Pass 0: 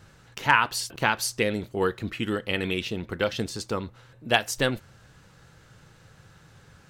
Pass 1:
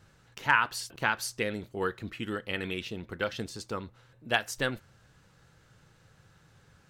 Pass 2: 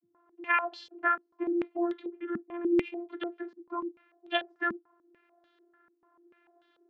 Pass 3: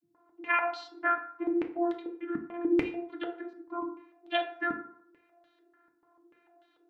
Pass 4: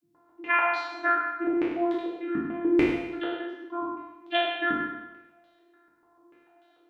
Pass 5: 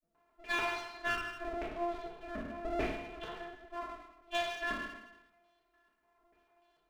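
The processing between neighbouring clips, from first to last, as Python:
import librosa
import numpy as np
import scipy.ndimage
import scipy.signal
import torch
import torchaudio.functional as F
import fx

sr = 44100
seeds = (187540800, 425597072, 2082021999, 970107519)

y1 = fx.dynamic_eq(x, sr, hz=1500.0, q=1.7, threshold_db=-38.0, ratio=4.0, max_db=5)
y1 = y1 * librosa.db_to_amplitude(-7.0)
y2 = fx.vocoder(y1, sr, bands=32, carrier='saw', carrier_hz=345.0)
y2 = fx.filter_held_lowpass(y2, sr, hz=6.8, low_hz=220.0, high_hz=3500.0)
y2 = y2 * librosa.db_to_amplitude(-3.5)
y3 = fx.rev_fdn(y2, sr, rt60_s=0.6, lf_ratio=0.85, hf_ratio=0.6, size_ms=20.0, drr_db=3.0)
y4 = fx.spec_trails(y3, sr, decay_s=0.97)
y4 = y4 + 10.0 ** (-10.5 / 20.0) * np.pad(y4, (int(98 * sr / 1000.0), 0))[:len(y4)]
y4 = y4 * librosa.db_to_amplitude(2.0)
y5 = fx.lower_of_two(y4, sr, delay_ms=4.6)
y5 = y5 * librosa.db_to_amplitude(-8.5)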